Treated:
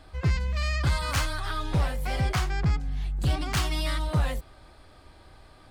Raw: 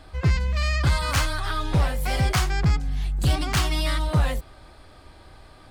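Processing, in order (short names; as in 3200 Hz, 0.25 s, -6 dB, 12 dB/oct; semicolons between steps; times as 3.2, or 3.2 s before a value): 1.96–3.46 high shelf 4700 Hz -6 dB; gain -4 dB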